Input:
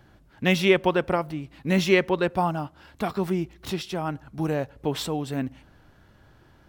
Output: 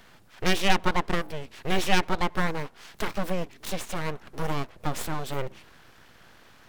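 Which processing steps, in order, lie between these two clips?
full-wave rectifier; mismatched tape noise reduction encoder only

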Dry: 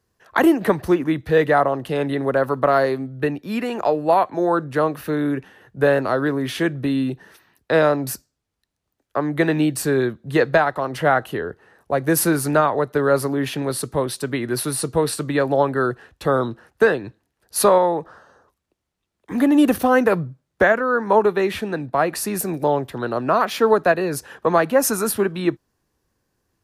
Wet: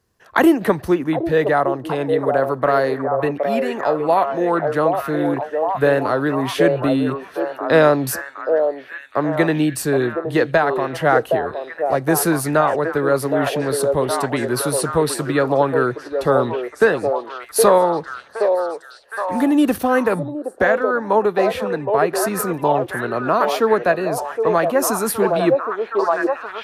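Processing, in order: de-esser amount 25%; on a send: delay with a stepping band-pass 0.767 s, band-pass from 540 Hz, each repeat 0.7 oct, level -2 dB; on the sum: vocal rider 2 s

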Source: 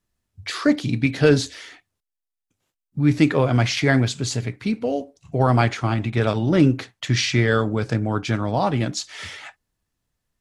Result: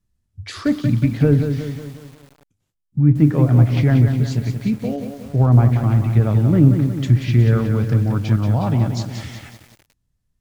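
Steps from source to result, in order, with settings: tone controls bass +14 dB, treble +3 dB; on a send: analogue delay 97 ms, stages 1024, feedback 31%, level -21 dB; on the sum: treble ducked by the level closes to 1200 Hz, closed at -5 dBFS; lo-fi delay 0.182 s, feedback 55%, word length 6-bit, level -7 dB; gain -5.5 dB

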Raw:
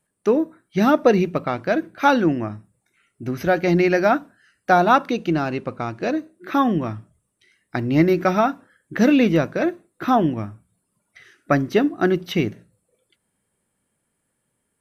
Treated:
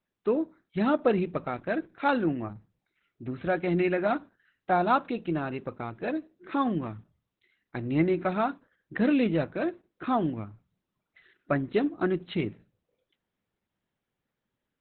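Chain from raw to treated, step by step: gain -8 dB; Opus 8 kbps 48000 Hz

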